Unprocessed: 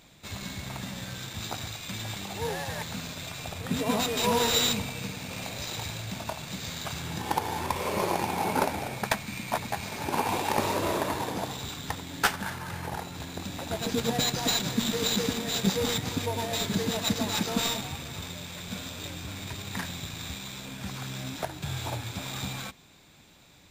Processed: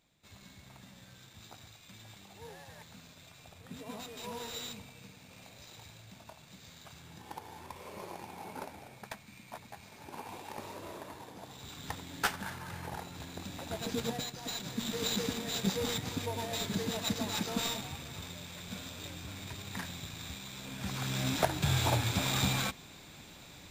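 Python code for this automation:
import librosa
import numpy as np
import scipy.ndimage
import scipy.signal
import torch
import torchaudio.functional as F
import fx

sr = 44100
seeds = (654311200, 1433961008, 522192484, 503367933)

y = fx.gain(x, sr, db=fx.line((11.37, -17.0), (11.87, -6.5), (14.07, -6.5), (14.32, -15.0), (15.04, -6.0), (20.5, -6.0), (21.32, 4.5)))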